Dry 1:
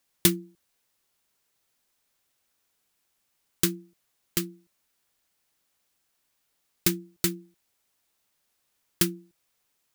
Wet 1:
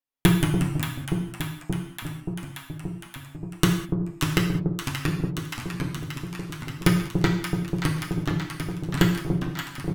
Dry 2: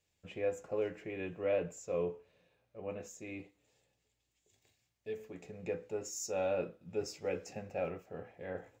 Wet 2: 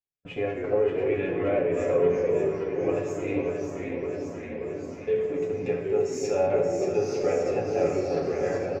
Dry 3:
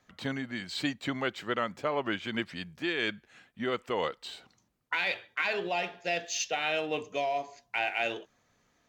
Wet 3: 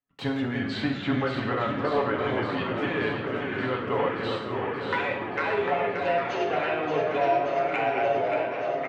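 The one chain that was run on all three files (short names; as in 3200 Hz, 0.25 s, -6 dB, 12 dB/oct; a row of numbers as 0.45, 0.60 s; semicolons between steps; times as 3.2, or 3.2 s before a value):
gate -51 dBFS, range -34 dB; treble ducked by the level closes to 1600 Hz, closed at -30 dBFS; bell 7500 Hz -9.5 dB 1.8 oct; comb 7.2 ms, depth 56%; dynamic EQ 280 Hz, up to -7 dB, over -48 dBFS, Q 2.2; in parallel at +0.5 dB: compressor, threshold -37 dBFS; on the sum: soft clip -14 dBFS; echo with dull and thin repeats by turns 0.289 s, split 810 Hz, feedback 87%, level -5.5 dB; non-linear reverb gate 0.23 s falling, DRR 2 dB; echoes that change speed 0.147 s, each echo -2 st, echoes 3, each echo -6 dB; match loudness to -27 LUFS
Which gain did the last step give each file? +10.0, +3.5, 0.0 dB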